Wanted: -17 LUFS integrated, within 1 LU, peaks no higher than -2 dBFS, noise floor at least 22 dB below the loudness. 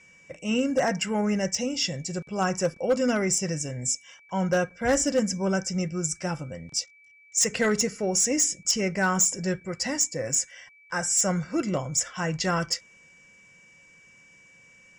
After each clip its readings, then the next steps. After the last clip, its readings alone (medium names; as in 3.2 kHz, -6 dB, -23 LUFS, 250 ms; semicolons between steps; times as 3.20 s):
clipped samples 0.3%; clipping level -16.5 dBFS; steady tone 2.3 kHz; tone level -53 dBFS; loudness -26.0 LUFS; peak level -16.5 dBFS; loudness target -17.0 LUFS
-> clip repair -16.5 dBFS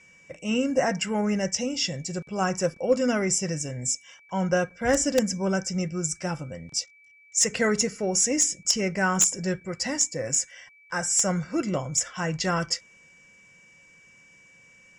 clipped samples 0.0%; steady tone 2.3 kHz; tone level -53 dBFS
-> band-stop 2.3 kHz, Q 30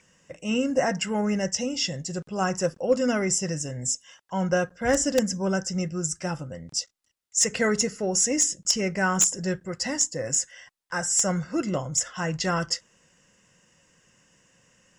steady tone not found; loudness -25.5 LUFS; peak level -7.5 dBFS; loudness target -17.0 LUFS
-> trim +8.5 dB; peak limiter -2 dBFS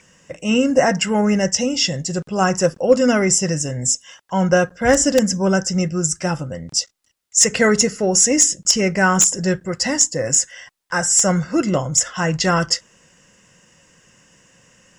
loudness -17.5 LUFS; peak level -2.0 dBFS; noise floor -61 dBFS